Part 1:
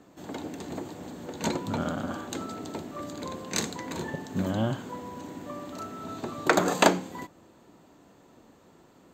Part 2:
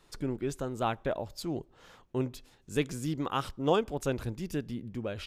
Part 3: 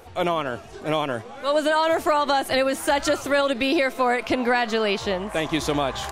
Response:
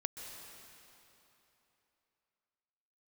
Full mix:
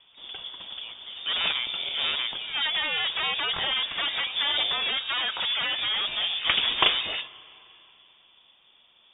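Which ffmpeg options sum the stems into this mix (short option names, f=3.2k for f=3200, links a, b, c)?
-filter_complex "[0:a]aexciter=amount=4.5:drive=4.8:freq=2.6k,volume=-5dB,asplit=2[a][b];[b]volume=-11dB[c];[1:a]volume=-14dB[d];[2:a]aeval=exprs='0.335*sin(PI/2*3.98*val(0)/0.335)':c=same,adelay=1100,volume=-14.5dB[e];[3:a]atrim=start_sample=2205[f];[c][f]afir=irnorm=-1:irlink=0[g];[a][d][e][g]amix=inputs=4:normalize=0,lowpass=f=3.1k:t=q:w=0.5098,lowpass=f=3.1k:t=q:w=0.6013,lowpass=f=3.1k:t=q:w=0.9,lowpass=f=3.1k:t=q:w=2.563,afreqshift=-3700"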